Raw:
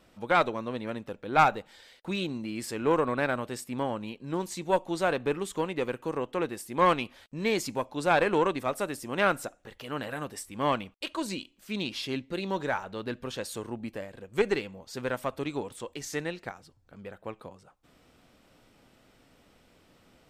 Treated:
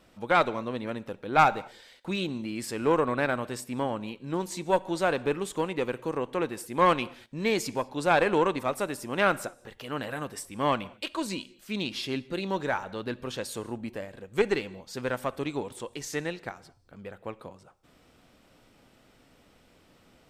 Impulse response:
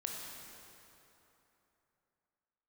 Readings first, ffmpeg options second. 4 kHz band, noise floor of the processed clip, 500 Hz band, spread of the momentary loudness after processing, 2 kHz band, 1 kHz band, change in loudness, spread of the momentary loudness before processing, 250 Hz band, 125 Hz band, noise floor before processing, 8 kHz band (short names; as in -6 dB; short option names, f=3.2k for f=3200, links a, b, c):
+1.0 dB, -61 dBFS, +1.0 dB, 15 LU, +1.0 dB, +1.0 dB, +1.0 dB, 14 LU, +1.0 dB, +1.0 dB, -63 dBFS, +1.0 dB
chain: -filter_complex "[0:a]asplit=2[a][b];[1:a]atrim=start_sample=2205,afade=t=out:st=0.17:d=0.01,atrim=end_sample=7938,asetrate=24696,aresample=44100[c];[b][c]afir=irnorm=-1:irlink=0,volume=-18dB[d];[a][d]amix=inputs=2:normalize=0"